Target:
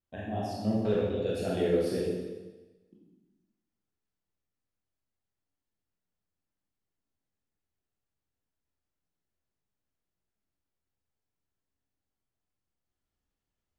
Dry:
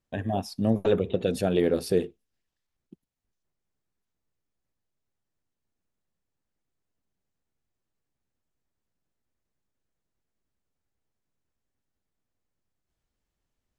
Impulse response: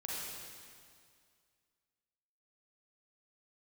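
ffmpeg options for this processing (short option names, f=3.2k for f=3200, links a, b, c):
-filter_complex "[0:a]highshelf=f=7.5k:g=-5.5[a];[1:a]atrim=start_sample=2205,asetrate=79380,aresample=44100[b];[a][b]afir=irnorm=-1:irlink=0"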